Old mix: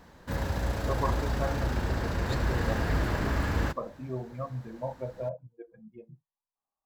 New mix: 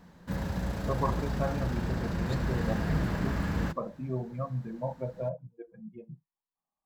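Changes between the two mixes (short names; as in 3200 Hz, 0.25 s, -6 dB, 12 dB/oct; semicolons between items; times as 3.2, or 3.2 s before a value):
background -4.5 dB; master: add bell 180 Hz +12 dB 0.53 oct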